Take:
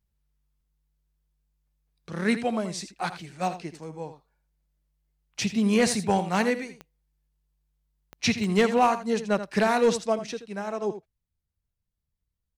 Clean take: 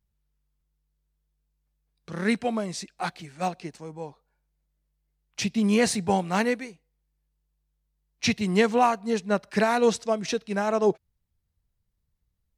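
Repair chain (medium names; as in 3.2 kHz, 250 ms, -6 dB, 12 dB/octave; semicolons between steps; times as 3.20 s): clip repair -13 dBFS; de-click; inverse comb 81 ms -12 dB; gain correction +7 dB, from 10.19 s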